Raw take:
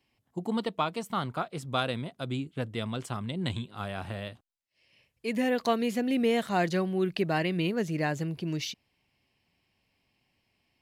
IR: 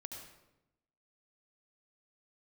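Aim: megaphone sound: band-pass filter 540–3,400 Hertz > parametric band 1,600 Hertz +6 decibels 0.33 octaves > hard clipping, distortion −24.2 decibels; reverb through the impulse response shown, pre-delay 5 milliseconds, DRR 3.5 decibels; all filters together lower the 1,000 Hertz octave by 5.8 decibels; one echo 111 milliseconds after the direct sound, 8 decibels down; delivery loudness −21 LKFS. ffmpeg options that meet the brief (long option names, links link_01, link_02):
-filter_complex "[0:a]equalizer=frequency=1000:width_type=o:gain=-8.5,aecho=1:1:111:0.398,asplit=2[link_01][link_02];[1:a]atrim=start_sample=2205,adelay=5[link_03];[link_02][link_03]afir=irnorm=-1:irlink=0,volume=0dB[link_04];[link_01][link_04]amix=inputs=2:normalize=0,highpass=540,lowpass=3400,equalizer=frequency=1600:width_type=o:width=0.33:gain=6,asoftclip=type=hard:threshold=-22.5dB,volume=14.5dB"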